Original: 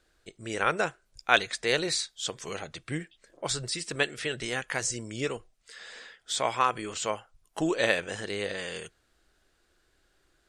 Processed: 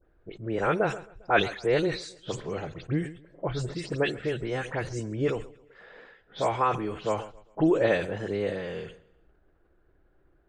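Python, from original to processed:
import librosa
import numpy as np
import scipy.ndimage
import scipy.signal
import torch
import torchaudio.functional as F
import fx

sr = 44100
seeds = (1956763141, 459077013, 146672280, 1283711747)

y = fx.spec_delay(x, sr, highs='late', ms=107)
y = fx.lowpass(y, sr, hz=3300.0, slope=6)
y = fx.env_lowpass(y, sr, base_hz=2100.0, full_db=-28.0)
y = fx.tilt_shelf(y, sr, db=7.0, hz=1100.0)
y = fx.echo_feedback(y, sr, ms=134, feedback_pct=47, wet_db=-22)
y = fx.sustainer(y, sr, db_per_s=120.0)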